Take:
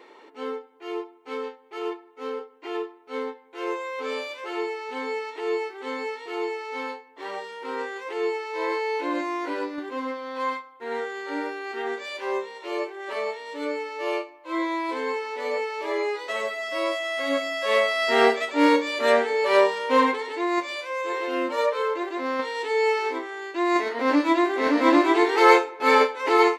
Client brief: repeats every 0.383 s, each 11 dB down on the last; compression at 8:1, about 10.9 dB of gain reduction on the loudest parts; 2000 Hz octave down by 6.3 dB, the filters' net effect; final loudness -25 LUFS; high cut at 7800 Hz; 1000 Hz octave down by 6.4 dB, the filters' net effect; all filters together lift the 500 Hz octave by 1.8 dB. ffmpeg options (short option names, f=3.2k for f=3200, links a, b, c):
-af "lowpass=7.8k,equalizer=f=500:t=o:g=4,equalizer=f=1k:t=o:g=-7.5,equalizer=f=2k:t=o:g=-5.5,acompressor=threshold=-24dB:ratio=8,aecho=1:1:383|766|1149:0.282|0.0789|0.0221,volume=5dB"